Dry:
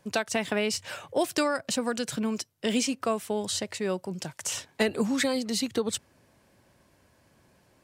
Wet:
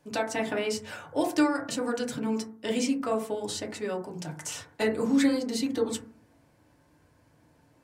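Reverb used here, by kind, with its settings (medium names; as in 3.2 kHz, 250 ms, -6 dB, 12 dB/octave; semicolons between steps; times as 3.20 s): FDN reverb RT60 0.45 s, low-frequency decay 1.4×, high-frequency decay 0.25×, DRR -1.5 dB; trim -5.5 dB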